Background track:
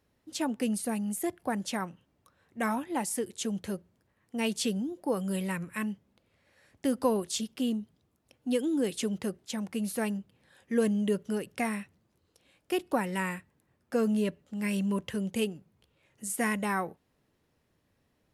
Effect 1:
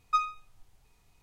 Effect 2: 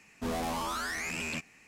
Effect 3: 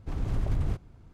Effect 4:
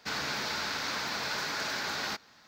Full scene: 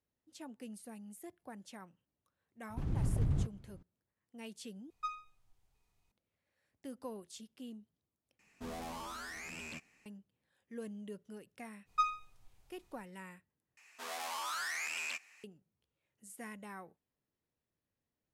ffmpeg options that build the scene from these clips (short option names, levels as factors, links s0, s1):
-filter_complex "[1:a]asplit=2[s0][s1];[2:a]asplit=2[s2][s3];[0:a]volume=0.126[s4];[3:a]equalizer=f=150:w=0.68:g=9.5[s5];[s1]acontrast=52[s6];[s3]highpass=980[s7];[s4]asplit=4[s8][s9][s10][s11];[s8]atrim=end=4.904[s12];[s0]atrim=end=1.22,asetpts=PTS-STARTPTS,volume=0.224[s13];[s9]atrim=start=6.116:end=8.394[s14];[s2]atrim=end=1.67,asetpts=PTS-STARTPTS,volume=0.299[s15];[s10]atrim=start=10.056:end=13.774[s16];[s7]atrim=end=1.67,asetpts=PTS-STARTPTS,volume=0.75[s17];[s11]atrim=start=15.436[s18];[s5]atrim=end=1.13,asetpts=PTS-STARTPTS,volume=0.355,afade=t=in:d=0.004:c=hsin,afade=t=out:st=1.126:d=0.004:c=hsin,adelay=2700[s19];[s6]atrim=end=1.22,asetpts=PTS-STARTPTS,volume=0.299,afade=t=in:d=0.05,afade=t=out:st=1.17:d=0.05,adelay=11850[s20];[s12][s13]acrossfade=d=0.004:c1=hsin:c2=hsin[s21];[s21][s14]acrossfade=d=0.004:c1=hsin:c2=hsin[s22];[s22][s15]acrossfade=d=0.004:c1=hsin:c2=hsin[s23];[s23][s16]acrossfade=d=0.004:c1=hsin:c2=hsin[s24];[s24][s17]acrossfade=d=0.004:c1=hsin:c2=hsin[s25];[s25][s18]acrossfade=d=0.004:c1=hsin:c2=hsin[s26];[s26][s19][s20]amix=inputs=3:normalize=0"